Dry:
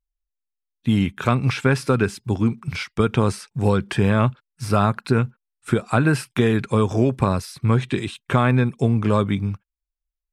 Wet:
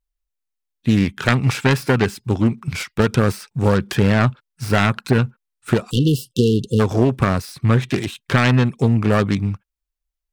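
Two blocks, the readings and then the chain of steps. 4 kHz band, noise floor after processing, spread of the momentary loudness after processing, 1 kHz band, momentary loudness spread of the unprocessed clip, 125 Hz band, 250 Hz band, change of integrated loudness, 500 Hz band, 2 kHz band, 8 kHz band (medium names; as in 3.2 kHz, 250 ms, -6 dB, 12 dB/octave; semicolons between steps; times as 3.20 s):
+5.0 dB, -81 dBFS, 6 LU, +0.5 dB, 7 LU, +2.5 dB, +2.5 dB, +2.5 dB, +2.0 dB, +4.0 dB, +3.5 dB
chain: self-modulated delay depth 0.37 ms; spectral selection erased 5.90–6.80 s, 520–2700 Hz; trim +3 dB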